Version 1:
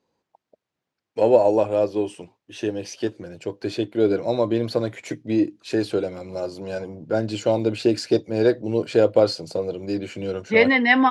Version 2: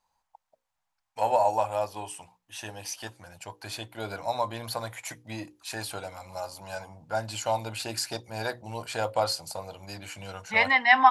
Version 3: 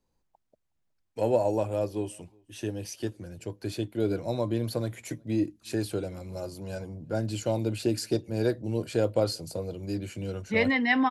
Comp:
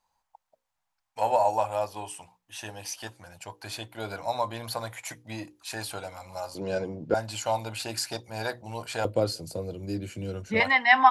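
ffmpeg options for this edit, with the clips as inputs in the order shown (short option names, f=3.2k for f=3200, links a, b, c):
-filter_complex "[1:a]asplit=3[a][b][c];[a]atrim=end=6.552[d];[0:a]atrim=start=6.548:end=7.142[e];[b]atrim=start=7.138:end=9.052[f];[2:a]atrim=start=9.048:end=10.602[g];[c]atrim=start=10.598[h];[d][e]acrossfade=d=0.004:c1=hsin:c2=hsin[i];[i][f]acrossfade=d=0.004:c1=hsin:c2=hsin[j];[j][g]acrossfade=d=0.004:c1=hsin:c2=hsin[k];[k][h]acrossfade=d=0.004:c1=hsin:c2=hsin"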